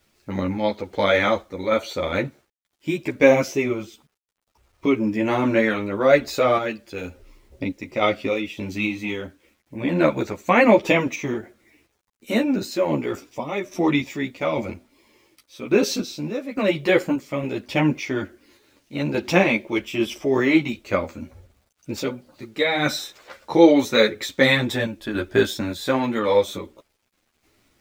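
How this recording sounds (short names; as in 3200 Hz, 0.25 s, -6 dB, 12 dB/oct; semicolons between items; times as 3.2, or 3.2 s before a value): random-step tremolo, depth 70%; a quantiser's noise floor 12-bit, dither none; a shimmering, thickened sound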